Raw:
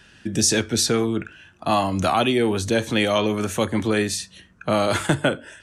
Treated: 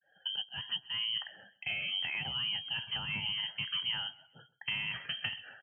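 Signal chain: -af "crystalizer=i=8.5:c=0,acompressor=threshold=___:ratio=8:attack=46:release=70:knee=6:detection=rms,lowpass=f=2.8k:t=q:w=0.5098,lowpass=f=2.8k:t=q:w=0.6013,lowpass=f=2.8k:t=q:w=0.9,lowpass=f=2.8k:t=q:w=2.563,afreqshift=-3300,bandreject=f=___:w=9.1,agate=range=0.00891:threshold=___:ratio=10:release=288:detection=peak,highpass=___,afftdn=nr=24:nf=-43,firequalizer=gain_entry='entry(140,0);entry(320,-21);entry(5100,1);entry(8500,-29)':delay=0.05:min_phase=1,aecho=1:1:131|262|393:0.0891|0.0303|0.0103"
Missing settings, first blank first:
0.0631, 1.1k, 0.00631, 130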